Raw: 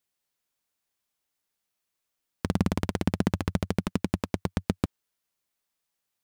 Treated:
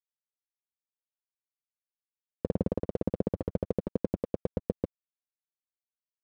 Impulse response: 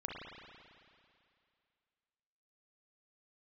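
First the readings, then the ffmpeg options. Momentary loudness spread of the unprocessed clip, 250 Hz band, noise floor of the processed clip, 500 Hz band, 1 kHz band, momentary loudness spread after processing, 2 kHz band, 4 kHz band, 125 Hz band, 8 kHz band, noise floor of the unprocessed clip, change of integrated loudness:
5 LU, -5.0 dB, under -85 dBFS, +3.0 dB, -10.5 dB, 5 LU, -19.0 dB, under -20 dB, -6.5 dB, under -20 dB, -83 dBFS, -4.0 dB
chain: -af "alimiter=limit=-17dB:level=0:latency=1:release=437,lowpass=f=510:t=q:w=4.9,aeval=exprs='sgn(val(0))*max(abs(val(0))-0.00631,0)':c=same"

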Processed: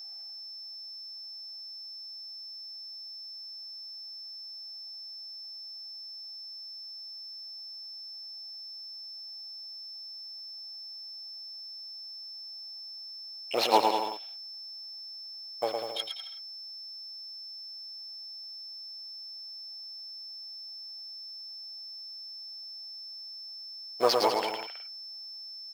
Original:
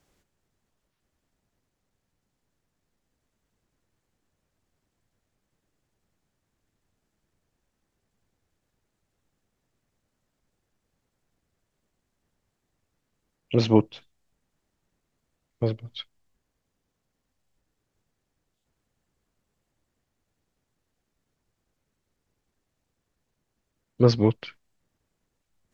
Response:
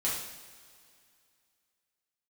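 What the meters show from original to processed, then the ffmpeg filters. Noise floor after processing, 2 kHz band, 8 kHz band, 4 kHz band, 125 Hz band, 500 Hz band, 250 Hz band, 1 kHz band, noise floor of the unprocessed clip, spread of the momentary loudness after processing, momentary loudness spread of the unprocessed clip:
-44 dBFS, +5.0 dB, n/a, +10.5 dB, under -30 dB, -3.0 dB, -14.5 dB, +10.0 dB, -80 dBFS, 9 LU, 19 LU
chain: -filter_complex "[0:a]aeval=exprs='if(lt(val(0),0),0.708*val(0),val(0))':c=same,asplit=2[a][b];[b]aecho=0:1:110|198|268.4|324.7|369.8:0.631|0.398|0.251|0.158|0.1[c];[a][c]amix=inputs=2:normalize=0,adynamicsmooth=sensitivity=8:basefreq=2.7k,aeval=exprs='val(0)+0.00447*sin(2*PI*5300*n/s)':c=same,highshelf=f=2k:g=8,asplit=2[d][e];[e]acrusher=bits=4:mode=log:mix=0:aa=0.000001,volume=-6dB[f];[d][f]amix=inputs=2:normalize=0,highpass=f=750:t=q:w=4.9,volume=-4.5dB"

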